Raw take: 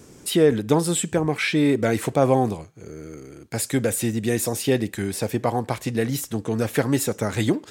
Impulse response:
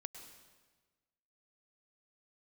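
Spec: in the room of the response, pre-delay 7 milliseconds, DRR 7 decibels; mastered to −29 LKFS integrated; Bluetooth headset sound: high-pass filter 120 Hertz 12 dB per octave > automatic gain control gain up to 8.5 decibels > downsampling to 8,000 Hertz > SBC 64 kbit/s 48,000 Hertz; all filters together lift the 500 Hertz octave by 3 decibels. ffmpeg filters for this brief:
-filter_complex "[0:a]equalizer=frequency=500:width_type=o:gain=3.5,asplit=2[link_01][link_02];[1:a]atrim=start_sample=2205,adelay=7[link_03];[link_02][link_03]afir=irnorm=-1:irlink=0,volume=-3dB[link_04];[link_01][link_04]amix=inputs=2:normalize=0,highpass=120,dynaudnorm=maxgain=8.5dB,aresample=8000,aresample=44100,volume=-8.5dB" -ar 48000 -c:a sbc -b:a 64k

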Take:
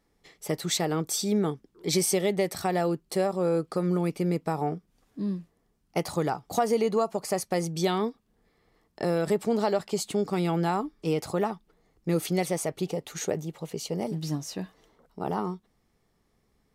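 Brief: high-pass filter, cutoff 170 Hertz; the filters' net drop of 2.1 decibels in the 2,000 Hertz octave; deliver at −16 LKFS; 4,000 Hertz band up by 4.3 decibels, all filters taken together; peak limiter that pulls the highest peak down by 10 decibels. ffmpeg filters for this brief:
ffmpeg -i in.wav -af "highpass=170,equalizer=frequency=2000:width_type=o:gain=-4,equalizer=frequency=4000:width_type=o:gain=6,volume=16.5dB,alimiter=limit=-5dB:level=0:latency=1" out.wav

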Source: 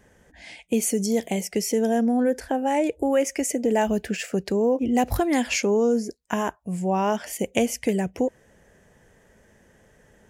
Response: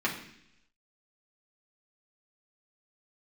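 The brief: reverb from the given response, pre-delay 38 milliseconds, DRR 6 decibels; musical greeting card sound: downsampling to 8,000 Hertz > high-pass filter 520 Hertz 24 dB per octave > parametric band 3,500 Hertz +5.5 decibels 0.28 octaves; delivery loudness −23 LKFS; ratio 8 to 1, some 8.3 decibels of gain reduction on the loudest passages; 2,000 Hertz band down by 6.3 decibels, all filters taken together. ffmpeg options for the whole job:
-filter_complex "[0:a]equalizer=frequency=2000:width_type=o:gain=-8.5,acompressor=threshold=-26dB:ratio=8,asplit=2[link_01][link_02];[1:a]atrim=start_sample=2205,adelay=38[link_03];[link_02][link_03]afir=irnorm=-1:irlink=0,volume=-15.5dB[link_04];[link_01][link_04]amix=inputs=2:normalize=0,aresample=8000,aresample=44100,highpass=frequency=520:width=0.5412,highpass=frequency=520:width=1.3066,equalizer=frequency=3500:width_type=o:width=0.28:gain=5.5,volume=14dB"

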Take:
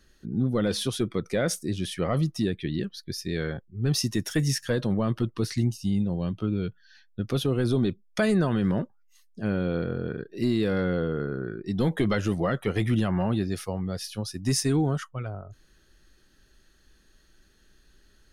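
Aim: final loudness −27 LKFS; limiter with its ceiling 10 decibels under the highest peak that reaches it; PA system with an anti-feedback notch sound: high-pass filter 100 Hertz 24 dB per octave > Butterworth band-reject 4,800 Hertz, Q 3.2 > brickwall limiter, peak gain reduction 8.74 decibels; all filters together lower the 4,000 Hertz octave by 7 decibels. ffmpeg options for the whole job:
ffmpeg -i in.wav -af "equalizer=frequency=4000:width_type=o:gain=-5,alimiter=level_in=1.5dB:limit=-24dB:level=0:latency=1,volume=-1.5dB,highpass=frequency=100:width=0.5412,highpass=frequency=100:width=1.3066,asuperstop=centerf=4800:order=8:qfactor=3.2,volume=12dB,alimiter=limit=-18dB:level=0:latency=1" out.wav

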